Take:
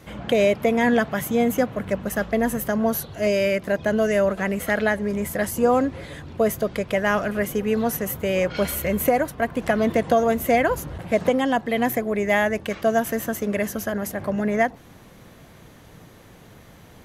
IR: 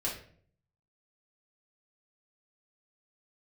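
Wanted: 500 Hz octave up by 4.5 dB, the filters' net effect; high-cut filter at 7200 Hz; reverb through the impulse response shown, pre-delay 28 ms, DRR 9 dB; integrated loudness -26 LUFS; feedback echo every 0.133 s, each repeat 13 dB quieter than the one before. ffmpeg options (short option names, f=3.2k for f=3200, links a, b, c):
-filter_complex "[0:a]lowpass=7.2k,equalizer=f=500:t=o:g=5.5,aecho=1:1:133|266|399:0.224|0.0493|0.0108,asplit=2[a][b];[1:a]atrim=start_sample=2205,adelay=28[c];[b][c]afir=irnorm=-1:irlink=0,volume=-13.5dB[d];[a][d]amix=inputs=2:normalize=0,volume=-7dB"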